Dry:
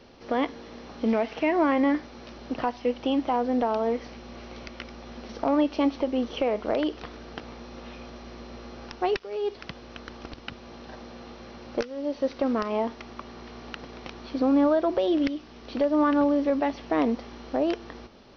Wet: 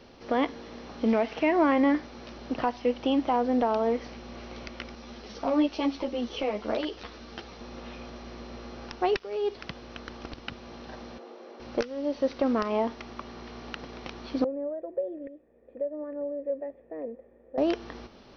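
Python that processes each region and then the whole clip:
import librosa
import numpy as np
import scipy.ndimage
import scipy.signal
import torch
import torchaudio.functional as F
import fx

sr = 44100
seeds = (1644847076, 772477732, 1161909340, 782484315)

y = fx.chain(x, sr, fx.peak_eq(hz=4800.0, db=5.0, octaves=1.8),
    fx.ensemble(), at=(4.95, 7.61))
y = fx.chain(y, sr, fx.highpass(hz=380.0, slope=24),
    fx.tilt_shelf(db=9.0, hz=660.0), at=(11.18, 11.6))
y = fx.chain(y, sr, fx.formant_cascade(vowel='e'),
    fx.peak_eq(hz=2500.0, db=-14.0, octaves=1.6), at=(14.44, 17.58))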